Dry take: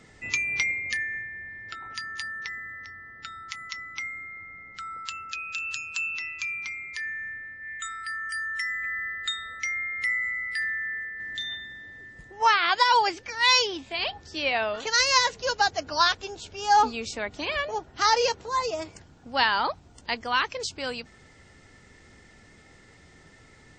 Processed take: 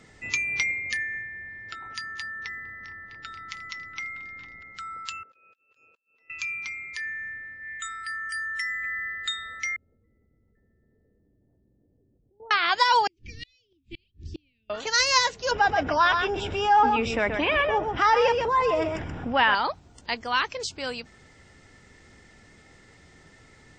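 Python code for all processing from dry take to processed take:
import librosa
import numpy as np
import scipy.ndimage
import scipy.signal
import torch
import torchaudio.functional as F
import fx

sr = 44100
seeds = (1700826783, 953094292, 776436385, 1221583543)

y = fx.chain(x, sr, fx.air_absorb(metres=65.0),
    fx.echo_opening(ms=229, hz=400, octaves=1, feedback_pct=70, wet_db=-3), at=(2.14, 4.63))
y = fx.chain(y, sr, fx.over_compress(threshold_db=-37.0, ratio=-0.5),
    fx.transient(attack_db=-1, sustain_db=-10),
    fx.bandpass_q(hz=480.0, q=4.0), at=(5.23, 6.3))
y = fx.chain(y, sr, fx.cheby2_lowpass(hz=3100.0, order=4, stop_db=80),
    fx.level_steps(step_db=22), at=(9.76, 12.51))
y = fx.chain(y, sr, fx.ellip_bandstop(low_hz=340.0, high_hz=2600.0, order=3, stop_db=80),
    fx.riaa(side='playback'),
    fx.gate_flip(shuts_db=-26.0, range_db=-37), at=(13.07, 14.7))
y = fx.chain(y, sr, fx.savgol(points=25),
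    fx.echo_single(ms=129, db=-10.5),
    fx.env_flatten(amount_pct=50), at=(15.51, 19.55))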